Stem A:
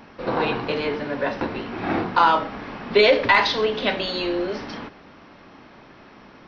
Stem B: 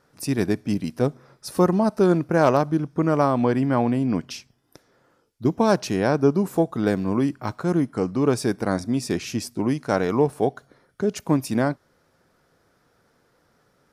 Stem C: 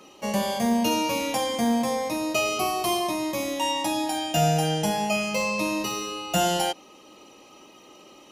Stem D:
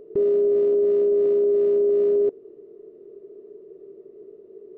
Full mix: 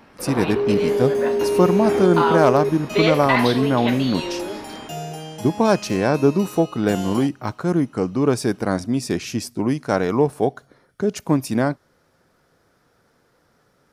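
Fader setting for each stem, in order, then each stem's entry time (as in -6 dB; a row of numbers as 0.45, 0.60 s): -4.0, +2.0, -9.5, -1.5 dB; 0.00, 0.00, 0.55, 0.40 s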